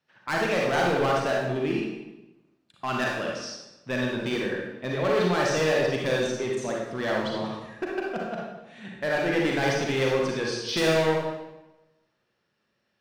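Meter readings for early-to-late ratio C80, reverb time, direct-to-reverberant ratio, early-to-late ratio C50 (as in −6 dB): 3.5 dB, 1.0 s, −2.5 dB, −0.5 dB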